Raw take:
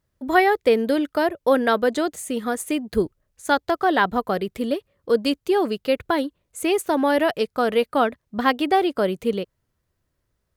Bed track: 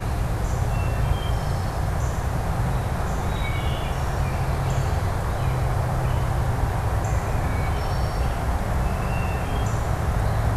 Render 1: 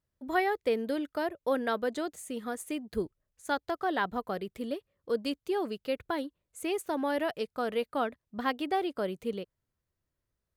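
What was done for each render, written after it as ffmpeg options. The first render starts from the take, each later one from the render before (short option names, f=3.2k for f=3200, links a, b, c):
-af "volume=-11dB"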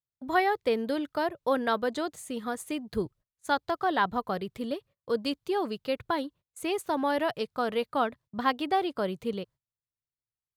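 -af "agate=range=-23dB:threshold=-54dB:ratio=16:detection=peak,equalizer=f=125:t=o:w=1:g=10,equalizer=f=1k:t=o:w=1:g=6,equalizer=f=4k:t=o:w=1:g=5"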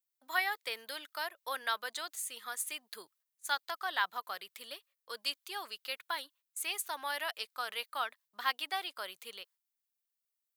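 -af "highpass=1.5k,highshelf=f=9.4k:g=12"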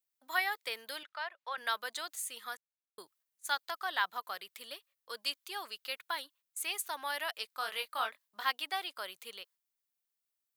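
-filter_complex "[0:a]asettb=1/sr,asplit=3[a][b][c];[a]atrim=end=1.034[d];[b]atrim=start=1.03:end=1.58,asetpts=PTS-STARTPTS,afade=t=in:d=0.004:c=qsin,afade=t=out:st=0.546:d=0.004:c=qsin,highpass=630,lowpass=3.1k[e];[c]atrim=start=1.576[f];[d][e]acrossfade=d=0.004:c1=hsin:c2=qsin[g];[g][f]acrossfade=d=0.004:c1=qsin:c2=hsin,asettb=1/sr,asplit=3[h][i][j];[h]atrim=end=7.594[k];[i]atrim=start=7.59:end=8.45,asetpts=PTS-STARTPTS,afade=t=in:d=0.004:c=qsin,afade=t=out:st=0.856:d=0.004:c=qsin,asplit=2[l][m];[m]adelay=23,volume=-4.5dB[n];[l][n]amix=inputs=2:normalize=0,atrim=end_sample=37926[o];[j]atrim=start=8.446[p];[k][o]acrossfade=d=0.004:c1=hsin:c2=qsin[q];[q][p]acrossfade=d=0.004:c1=qsin:c2=hsin,asplit=3[r][s][t];[r]atrim=end=2.57,asetpts=PTS-STARTPTS,afade=t=out:st=2.566:d=0.004:c=hsin[u];[s]atrim=start=2.57:end=2.98,asetpts=PTS-STARTPTS,volume=0[v];[t]atrim=start=2.98,asetpts=PTS-STARTPTS,afade=t=in:d=0.004:c=hsin[w];[u][v][w]concat=n=3:v=0:a=1"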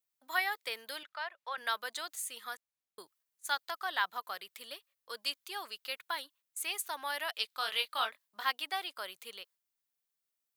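-filter_complex "[0:a]asettb=1/sr,asplit=3[a][b][c];[a]atrim=end=7.314[d];[b]atrim=start=7.31:end=8.05,asetpts=PTS-STARTPTS,afade=t=in:d=0.004:c=qsin,afade=t=out:st=0.736:d=0.004:c=qsin,equalizer=f=3.5k:w=1.3:g=7.5[e];[c]atrim=start=8.046[f];[d][e]acrossfade=d=0.004:c1=hsin:c2=qsin[g];[g][f]acrossfade=d=0.004:c1=qsin:c2=hsin"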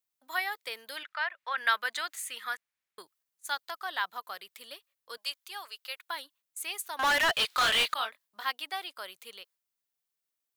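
-filter_complex "[0:a]asplit=3[a][b][c];[a]afade=t=out:st=0.96:d=0.02[d];[b]equalizer=f=1.9k:t=o:w=1.6:g=10.5,afade=t=in:st=0.96:d=0.02,afade=t=out:st=3.01:d=0.02[e];[c]afade=t=in:st=3.01:d=0.02[f];[d][e][f]amix=inputs=3:normalize=0,asettb=1/sr,asplit=3[g][h][i];[g]atrim=end=5.174[j];[h]atrim=start=5.17:end=6.09,asetpts=PTS-STARTPTS,afade=t=in:d=0.004:c=qsin,afade=t=out:st=0.916:d=0.004:c=qsin,highpass=580[k];[i]atrim=start=6.086[l];[j][k]acrossfade=d=0.004:c1=hsin:c2=qsin[m];[m][l]acrossfade=d=0.004:c1=qsin:c2=hsin,asettb=1/sr,asplit=3[n][o][p];[n]atrim=end=6.994[q];[o]atrim=start=6.99:end=7.94,asetpts=PTS-STARTPTS,afade=t=in:d=0.004:c=qsin,afade=t=out:st=0.946:d=0.004:c=qsin,asplit=2[r][s];[s]highpass=f=720:p=1,volume=32dB,asoftclip=type=tanh:threshold=-17dB[t];[r][t]amix=inputs=2:normalize=0,lowpass=f=3.9k:p=1,volume=-6dB[u];[p]atrim=start=7.936[v];[q][u]acrossfade=d=0.004:c1=hsin:c2=qsin[w];[w][v]acrossfade=d=0.004:c1=qsin:c2=hsin"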